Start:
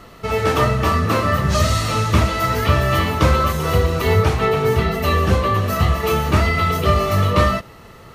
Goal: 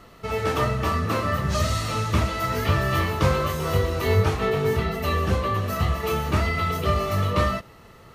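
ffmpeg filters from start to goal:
-filter_complex "[0:a]asettb=1/sr,asplit=3[a][b][c];[a]atrim=end=2.504[d];[b]atrim=start=2.5:end=4.77,asetpts=PTS-STARTPTS,afade=t=in:d=0.004:c=qsin,afade=t=out:st=2.266:d=0.004:c=qsin,asplit=2[e][f];[f]adelay=21,volume=-5dB[g];[e][g]amix=inputs=2:normalize=0,atrim=end_sample=100107[h];[c]atrim=start=4.766[i];[d][h]acrossfade=d=0.004:c1=hsin:c2=qsin[j];[j][i]acrossfade=d=0.004:c1=qsin:c2=hsin,volume=-6.5dB"

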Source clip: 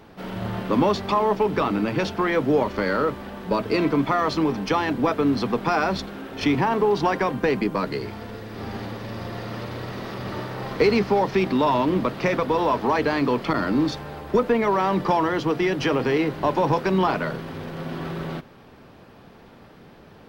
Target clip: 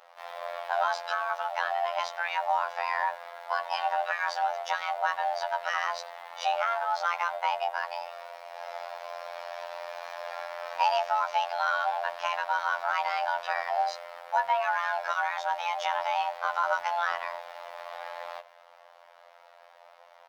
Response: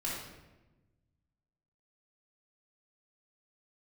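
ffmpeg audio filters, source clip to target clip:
-filter_complex "[0:a]afreqshift=470,afftfilt=real='hypot(re,im)*cos(PI*b)':imag='0':win_size=2048:overlap=0.75,asplit=2[a][b];[b]adelay=90,highpass=300,lowpass=3.4k,asoftclip=type=hard:threshold=-15dB,volume=-24dB[c];[a][c]amix=inputs=2:normalize=0,volume=-4dB"

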